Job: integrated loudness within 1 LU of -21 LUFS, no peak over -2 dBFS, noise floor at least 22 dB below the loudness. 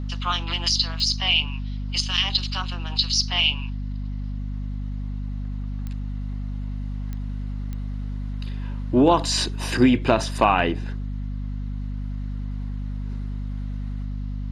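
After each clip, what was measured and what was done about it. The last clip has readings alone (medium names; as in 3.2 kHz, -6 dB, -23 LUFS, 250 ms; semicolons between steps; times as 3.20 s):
clicks found 4; hum 50 Hz; highest harmonic 250 Hz; hum level -26 dBFS; loudness -25.0 LUFS; peak level -4.5 dBFS; loudness target -21.0 LUFS
-> de-click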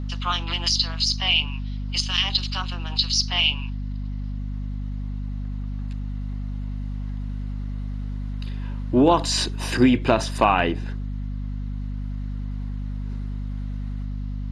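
clicks found 0; hum 50 Hz; highest harmonic 250 Hz; hum level -26 dBFS
-> hum notches 50/100/150/200/250 Hz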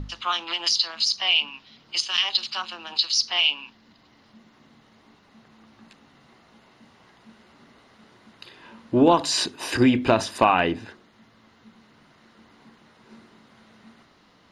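hum not found; loudness -22.0 LUFS; peak level -5.0 dBFS; loudness target -21.0 LUFS
-> trim +1 dB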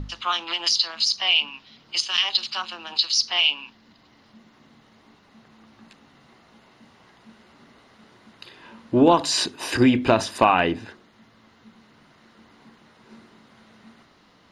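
loudness -21.0 LUFS; peak level -4.0 dBFS; noise floor -57 dBFS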